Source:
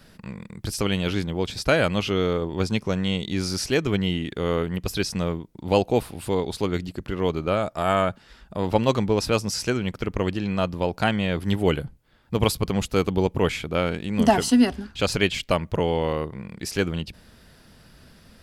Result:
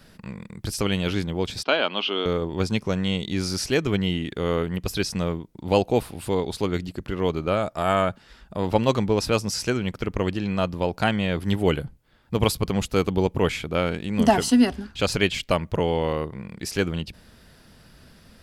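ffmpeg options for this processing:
ffmpeg -i in.wav -filter_complex "[0:a]asettb=1/sr,asplit=3[link_01][link_02][link_03];[link_01]atrim=end=1.634[link_04];[link_02]atrim=start=1.63:end=2.26,asetpts=PTS-STARTPTS,afade=type=in:duration=0.004:curve=qsin,afade=type=out:start_time=0.626:duration=0.004:curve=qsin,highpass=frequency=270:width=0.5412,highpass=frequency=270:width=1.3066,equalizer=frequency=320:width_type=q:width=4:gain=-4,equalizer=frequency=500:width_type=q:width=4:gain=-6,equalizer=frequency=960:width_type=q:width=4:gain=3,equalizer=frequency=1900:width_type=q:width=4:gain=-7,equalizer=frequency=3100:width_type=q:width=4:gain=8,lowpass=frequency=4300:width=0.5412,lowpass=frequency=4300:width=1.3066[link_05];[link_03]atrim=start=2.256[link_06];[link_04][link_05]acrossfade=duration=0.004:curve1=hsin:curve2=qsin[link_07];[link_07][link_06]acrossfade=duration=0.004:curve1=qsin:curve2=hsin" out.wav

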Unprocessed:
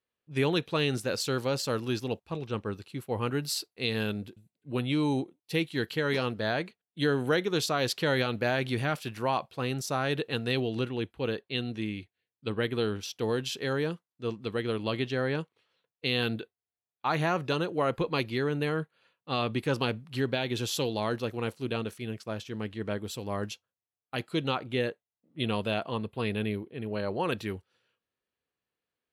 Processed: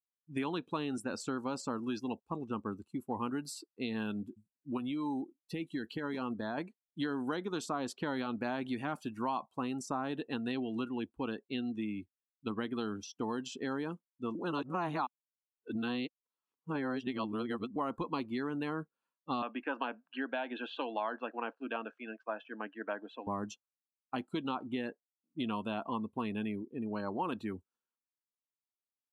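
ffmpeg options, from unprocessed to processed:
ffmpeg -i in.wav -filter_complex "[0:a]asettb=1/sr,asplit=3[link_01][link_02][link_03];[link_01]atrim=end=4.774[link_04];[link_02]atrim=start=4.77:end=6.58,asetpts=PTS-STARTPTS,afade=type=in:duration=0.004:curve=qsin,afade=type=out:start_time=1.806:duration=0.004:curve=qsin,acompressor=threshold=-29dB:ratio=12:attack=3.2:release=140:knee=1:detection=peak[link_05];[link_03]atrim=start=6.576[link_06];[link_04][link_05]acrossfade=duration=0.004:curve1=hsin:curve2=qsin[link_07];[link_07][link_06]acrossfade=duration=0.004:curve1=qsin:curve2=hsin,asettb=1/sr,asplit=3[link_08][link_09][link_10];[link_08]atrim=end=19.424[link_11];[link_09]atrim=start=19.42:end=23.27,asetpts=PTS-STARTPTS,afade=type=in:duration=0.004:curve=qsin,afade=type=out:start_time=3.846:duration=0.004:curve=qsin,highpass=frequency=320:width=0.5412,highpass=frequency=320:width=1.3066,equalizer=frequency=380:width_type=q:width=4:gain=-10,equalizer=frequency=650:width_type=q:width=4:gain=5,equalizer=frequency=1600:width_type=q:width=4:gain=10,equalizer=frequency=2600:width_type=q:width=4:gain=5,lowpass=frequency=3500:width=0.5412,lowpass=frequency=3500:width=1.3066[link_12];[link_10]atrim=start=23.266[link_13];[link_11][link_12]acrossfade=duration=0.004:curve1=hsin:curve2=qsin[link_14];[link_14][link_13]acrossfade=duration=0.004:curve1=qsin:curve2=hsin,asplit=3[link_15][link_16][link_17];[link_15]atrim=end=14.352[link_18];[link_16]atrim=start=14.348:end=17.762,asetpts=PTS-STARTPTS,areverse[link_19];[link_17]atrim=start=17.758[link_20];[link_18][link_19]acrossfade=duration=0.004:curve1=hsin:curve2=hsin[link_21];[link_21][link_20]acrossfade=duration=0.004:curve1=hsin:curve2=hsin,afftdn=noise_reduction=22:noise_floor=-41,equalizer=frequency=125:width_type=o:width=1:gain=-11,equalizer=frequency=250:width_type=o:width=1:gain=10,equalizer=frequency=500:width_type=o:width=1:gain=-8,equalizer=frequency=1000:width_type=o:width=1:gain=10,equalizer=frequency=2000:width_type=o:width=1:gain=-7,equalizer=frequency=4000:width_type=o:width=1:gain=-8,equalizer=frequency=8000:width_type=o:width=1:gain=11,acrossover=split=980|2900[link_22][link_23][link_24];[link_22]acompressor=threshold=-35dB:ratio=4[link_25];[link_23]acompressor=threshold=-44dB:ratio=4[link_26];[link_24]acompressor=threshold=-49dB:ratio=4[link_27];[link_25][link_26][link_27]amix=inputs=3:normalize=0" out.wav

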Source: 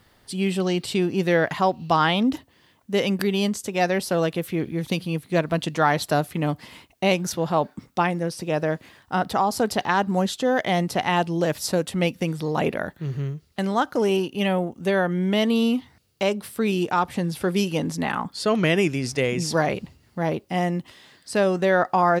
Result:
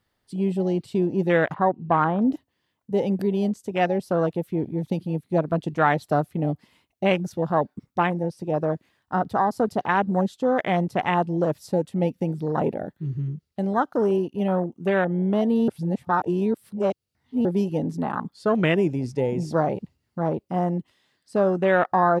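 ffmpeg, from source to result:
ffmpeg -i in.wav -filter_complex "[0:a]asettb=1/sr,asplit=3[link_01][link_02][link_03];[link_01]atrim=end=1.544[link_04];[link_02]atrim=start=1.54:end=2.21,asetpts=PTS-STARTPTS,afade=type=in:duration=0.004:curve=qsin,afade=type=out:start_time=0.666:duration=0.004:curve=qsin,lowpass=1600[link_05];[link_03]atrim=start=2.206[link_06];[link_04][link_05]acrossfade=duration=0.004:curve1=hsin:curve2=qsin[link_07];[link_07][link_06]acrossfade=duration=0.004:curve1=qsin:curve2=hsin,asplit=3[link_08][link_09][link_10];[link_08]atrim=end=15.682[link_11];[link_09]atrim=start=15.678:end=17.452,asetpts=PTS-STARTPTS,areverse[link_12];[link_10]atrim=start=17.448[link_13];[link_11][link_12]acrossfade=duration=0.004:curve1=hsin:curve2=hsin[link_14];[link_14][link_13]acrossfade=duration=0.004:curve1=hsin:curve2=hsin,afwtdn=0.0562" out.wav

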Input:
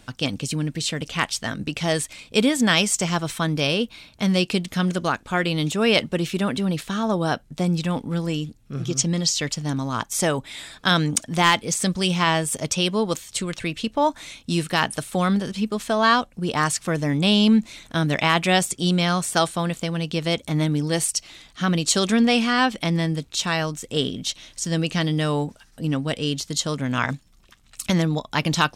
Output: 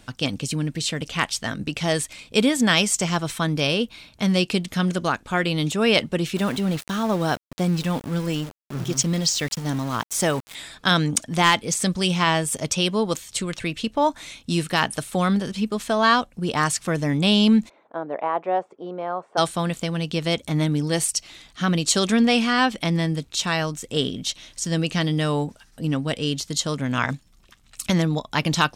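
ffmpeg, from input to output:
ffmpeg -i in.wav -filter_complex "[0:a]asettb=1/sr,asplit=3[link_01][link_02][link_03];[link_01]atrim=end=6.364[link_04];[link_02]atrim=start=6.36:end=10.55,asetpts=PTS-STARTPTS,afade=type=in:duration=0.004:curve=qsin,afade=type=out:start_time=4.186:duration=0.004:curve=qsin,aeval=exprs='val(0)*gte(abs(val(0)),0.0237)':channel_layout=same[link_05];[link_03]atrim=start=10.546[link_06];[link_04][link_05]acrossfade=duration=0.004:curve1=hsin:curve2=qsin[link_07];[link_07][link_06]acrossfade=duration=0.004:curve1=qsin:curve2=hsin,asplit=3[link_08][link_09][link_10];[link_08]afade=type=out:start_time=17.68:duration=0.02[link_11];[link_09]asuperpass=centerf=640:order=4:qfactor=1,afade=type=in:start_time=17.68:duration=0.02,afade=type=out:start_time=19.37:duration=0.02[link_12];[link_10]afade=type=in:start_time=19.37:duration=0.02[link_13];[link_11][link_12][link_13]amix=inputs=3:normalize=0" out.wav

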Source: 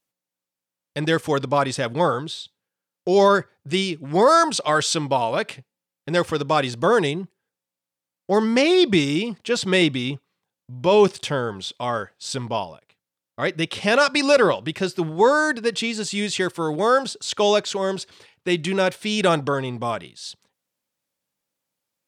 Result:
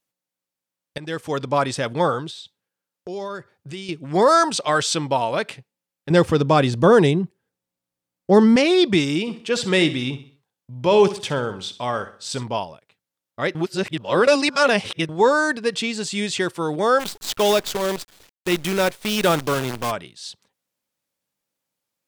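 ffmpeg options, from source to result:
ffmpeg -i in.wav -filter_complex "[0:a]asettb=1/sr,asplit=3[link_01][link_02][link_03];[link_01]atrim=end=2.304[link_04];[link_02]atrim=start=2.3:end=3.89,asetpts=PTS-STARTPTS,afade=type=in:duration=0.004:curve=qsin,afade=type=out:start_time=1.586:duration=0.004:curve=qsin,acompressor=threshold=-35dB:ratio=2.5:attack=3.2:release=140:knee=1:detection=peak[link_05];[link_03]atrim=start=3.886[link_06];[link_04][link_05]acrossfade=duration=0.004:curve1=hsin:curve2=qsin[link_07];[link_07][link_06]acrossfade=duration=0.004:curve1=qsin:curve2=hsin,asettb=1/sr,asplit=3[link_08][link_09][link_10];[link_08]atrim=end=6.104[link_11];[link_09]atrim=start=6.1:end=8.56,asetpts=PTS-STARTPTS,afade=type=in:duration=0.004:curve=qsin,afade=type=out:start_time=2.456:duration=0.004:curve=qsin,lowshelf=frequency=450:gain=10[link_12];[link_10]atrim=start=8.556[link_13];[link_11][link_12]acrossfade=duration=0.004:curve1=hsin:curve2=qsin[link_14];[link_14][link_13]acrossfade=duration=0.004:curve1=qsin:curve2=hsin,asplit=3[link_15][link_16][link_17];[link_15]afade=type=out:start_time=9.26:duration=0.02[link_18];[link_16]aecho=1:1:64|128|192|256:0.211|0.0845|0.0338|0.0135,afade=type=in:start_time=9.26:duration=0.02,afade=type=out:start_time=12.42:duration=0.02[link_19];[link_17]afade=type=in:start_time=12.42:duration=0.02[link_20];[link_18][link_19][link_20]amix=inputs=3:normalize=0,asplit=3[link_21][link_22][link_23];[link_21]afade=type=out:start_time=16.99:duration=0.02[link_24];[link_22]acrusher=bits=5:dc=4:mix=0:aa=0.000001,afade=type=in:start_time=16.99:duration=0.02,afade=type=out:start_time=19.9:duration=0.02[link_25];[link_23]afade=type=in:start_time=19.9:duration=0.02[link_26];[link_24][link_25][link_26]amix=inputs=3:normalize=0,asplit=4[link_27][link_28][link_29][link_30];[link_27]atrim=end=0.98,asetpts=PTS-STARTPTS,afade=type=out:start_time=0.976:duration=0.004:curve=hsin:silence=0.188365[link_31];[link_28]atrim=start=0.98:end=13.552,asetpts=PTS-STARTPTS,afade=type=in:duration=0.59:silence=0.188365[link_32];[link_29]atrim=start=13.548:end=15.092,asetpts=PTS-STARTPTS,areverse[link_33];[link_30]atrim=start=15.088[link_34];[link_31][link_32]concat=n=2:v=0:a=1[link_35];[link_35][link_33]acrossfade=duration=0.004:curve1=hsin:curve2=hsin[link_36];[link_36][link_34]acrossfade=duration=0.004:curve1=hsin:curve2=hsin" out.wav

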